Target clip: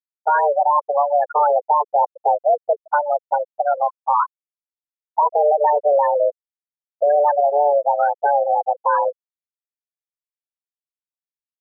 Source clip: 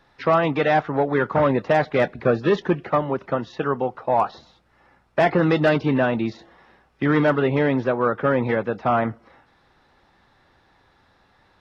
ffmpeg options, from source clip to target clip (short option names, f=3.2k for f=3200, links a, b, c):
-filter_complex "[0:a]highpass=f=170:t=q:w=0.5412,highpass=f=170:t=q:w=1.307,lowpass=f=2.6k:t=q:w=0.5176,lowpass=f=2.6k:t=q:w=0.7071,lowpass=f=2.6k:t=q:w=1.932,afreqshift=290,equalizer=f=600:w=0.44:g=12.5,acompressor=threshold=-11dB:ratio=2,asoftclip=type=hard:threshold=-7.5dB,asplit=2[a][b];[b]aecho=0:1:101:0.1[c];[a][c]amix=inputs=2:normalize=0,afftfilt=real='re*gte(hypot(re,im),0.631)':imag='im*gte(hypot(re,im),0.631)':win_size=1024:overlap=0.75,volume=-3dB"